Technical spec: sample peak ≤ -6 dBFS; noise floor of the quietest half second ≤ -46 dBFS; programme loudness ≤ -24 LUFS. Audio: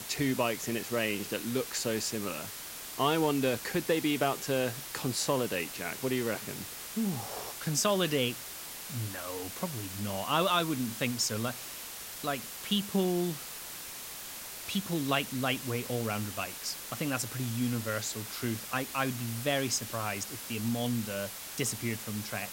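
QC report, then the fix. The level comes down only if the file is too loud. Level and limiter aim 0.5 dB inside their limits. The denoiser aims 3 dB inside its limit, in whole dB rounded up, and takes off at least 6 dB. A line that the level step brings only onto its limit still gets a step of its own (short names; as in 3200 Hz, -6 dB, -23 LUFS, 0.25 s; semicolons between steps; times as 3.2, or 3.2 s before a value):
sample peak -13.5 dBFS: OK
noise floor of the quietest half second -43 dBFS: fail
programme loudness -32.5 LUFS: OK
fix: denoiser 6 dB, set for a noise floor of -43 dBFS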